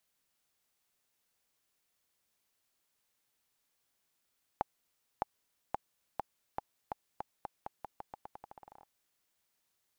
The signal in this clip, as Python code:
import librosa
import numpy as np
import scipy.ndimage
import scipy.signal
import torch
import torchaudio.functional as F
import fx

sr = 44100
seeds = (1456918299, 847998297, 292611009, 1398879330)

y = fx.bouncing_ball(sr, first_gap_s=0.61, ratio=0.86, hz=828.0, decay_ms=18.0, level_db=-16.5)